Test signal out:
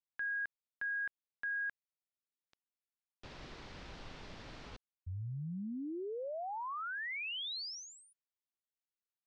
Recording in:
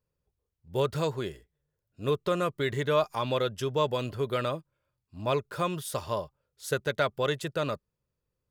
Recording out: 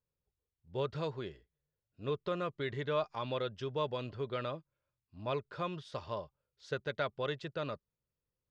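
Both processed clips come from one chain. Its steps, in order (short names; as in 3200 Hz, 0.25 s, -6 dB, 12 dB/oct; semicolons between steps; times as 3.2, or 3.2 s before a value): LPF 5000 Hz 24 dB/oct; gain -8 dB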